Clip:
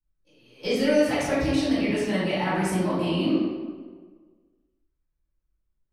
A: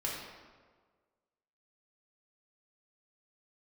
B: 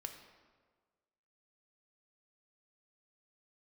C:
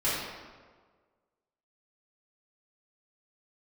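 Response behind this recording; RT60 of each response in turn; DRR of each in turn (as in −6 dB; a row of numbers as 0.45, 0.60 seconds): C; 1.5, 1.5, 1.5 seconds; −5.0, 4.5, −12.5 decibels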